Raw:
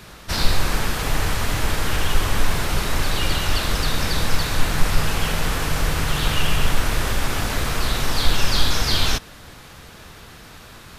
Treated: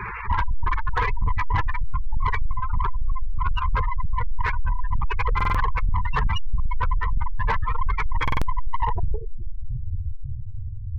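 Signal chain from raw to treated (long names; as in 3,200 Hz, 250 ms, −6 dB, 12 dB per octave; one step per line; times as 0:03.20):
dynamic equaliser 450 Hz, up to +4 dB, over −40 dBFS, Q 1.3
in parallel at +3 dB: downward compressor 10 to 1, threshold −28 dBFS, peak gain reduction 20.5 dB
on the sum: two-band tremolo in antiphase 3.2 Hz, depth 50%, crossover 2,000 Hz
thirty-one-band graphic EQ 160 Hz −7 dB, 250 Hz −10 dB, 630 Hz −5 dB, 1,000 Hz +10 dB, 4,000 Hz −5 dB
on a send: feedback delay with all-pass diffusion 971 ms, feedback 45%, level −12.5 dB
on the sum: low-pass filter sweep 2,200 Hz → 110 Hz, 0:08.44–0:09.89
0:02.61–0:03.70: phaser with its sweep stopped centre 2,100 Hz, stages 6
gate on every frequency bin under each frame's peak −10 dB strong
soft clipping −20.5 dBFS, distortion −8 dB
buffer that repeats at 0:05.36/0:08.23, samples 2,048, times 3
level +5 dB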